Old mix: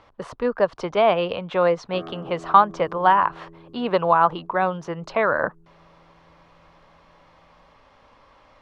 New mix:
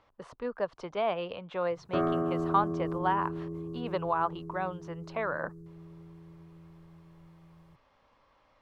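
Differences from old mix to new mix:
speech −12.0 dB
background +9.5 dB

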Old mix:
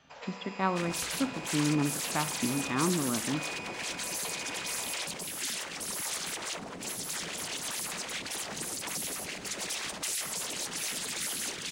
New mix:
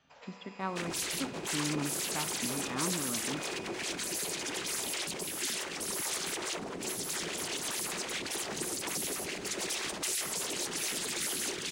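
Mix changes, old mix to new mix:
speech −7.0 dB
first sound −8.0 dB
second sound: add parametric band 370 Hz +8.5 dB 0.51 octaves

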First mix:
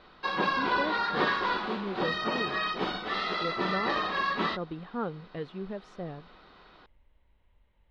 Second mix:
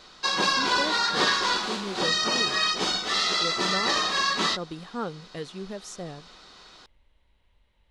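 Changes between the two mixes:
background: add high-shelf EQ 8,100 Hz +6 dB
master: remove high-frequency loss of the air 390 metres

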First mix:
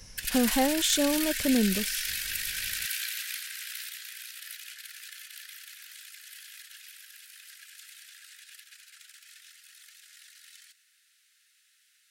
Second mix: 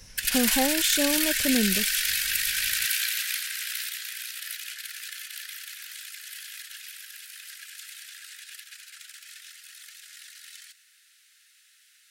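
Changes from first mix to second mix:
speech: send off
background +6.5 dB

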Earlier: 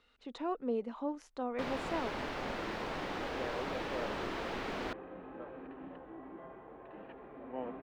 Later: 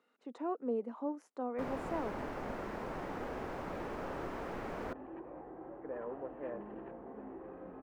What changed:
speech: add high-pass filter 200 Hz 24 dB per octave
second sound: entry +2.50 s
master: add parametric band 3,700 Hz −14.5 dB 1.7 octaves

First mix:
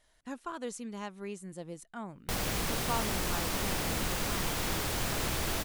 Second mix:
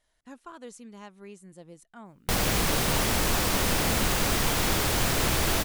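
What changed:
speech −5.0 dB
background +7.5 dB

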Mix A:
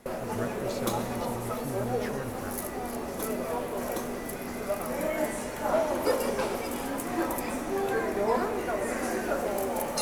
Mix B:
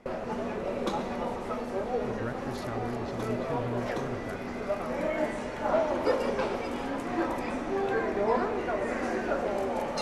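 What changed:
speech: entry +1.85 s
master: add low-pass filter 4,200 Hz 12 dB per octave

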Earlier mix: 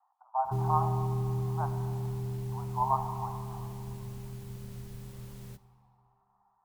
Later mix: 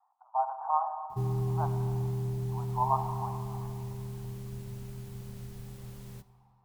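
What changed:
speech: add spectral tilt −3 dB per octave
background: entry +0.65 s

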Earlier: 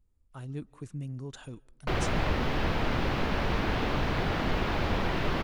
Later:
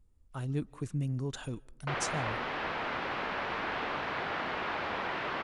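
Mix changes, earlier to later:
speech +4.5 dB
background: add resonant band-pass 1,400 Hz, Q 0.68

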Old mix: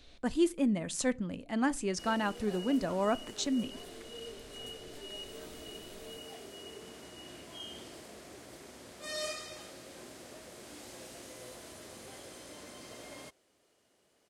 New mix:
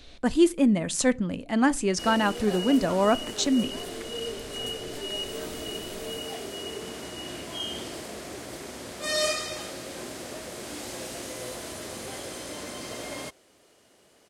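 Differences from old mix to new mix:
speech +8.0 dB
background +11.5 dB

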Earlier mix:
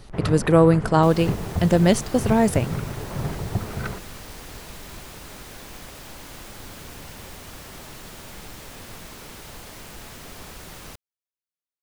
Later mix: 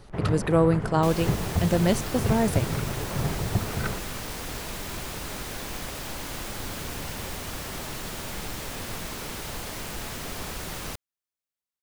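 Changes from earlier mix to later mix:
speech −5.5 dB
second sound +5.5 dB

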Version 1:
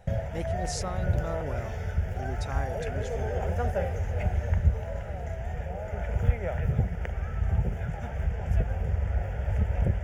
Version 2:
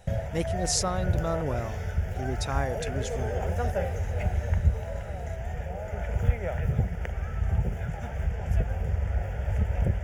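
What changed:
speech +6.0 dB
master: add high-shelf EQ 4,700 Hz +5.5 dB

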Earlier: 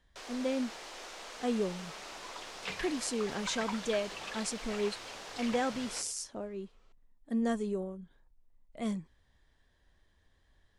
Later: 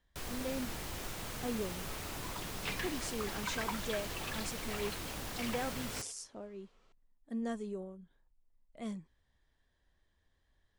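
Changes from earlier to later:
speech −6.5 dB
first sound: remove Chebyshev band-pass filter 520–6,000 Hz, order 2

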